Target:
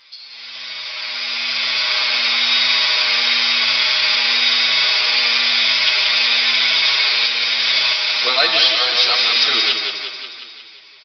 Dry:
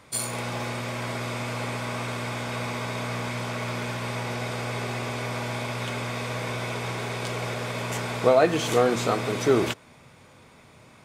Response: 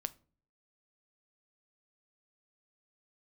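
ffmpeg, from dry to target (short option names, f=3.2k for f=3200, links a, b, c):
-filter_complex "[0:a]aderivative,asplit=2[a][b];[b]acompressor=threshold=-51dB:ratio=6,volume=-0.5dB[c];[a][c]amix=inputs=2:normalize=0,alimiter=level_in=1dB:limit=-24dB:level=0:latency=1:release=497,volume=-1dB,dynaudnorm=f=220:g=13:m=14dB,aecho=1:1:179|358|537|716|895|1074|1253|1432:0.531|0.313|0.185|0.109|0.0643|0.038|0.0224|0.0132,crystalizer=i=8.5:c=0,aresample=11025,aresample=44100,asplit=2[d][e];[e]adelay=7.8,afreqshift=-0.99[f];[d][f]amix=inputs=2:normalize=1,volume=3.5dB"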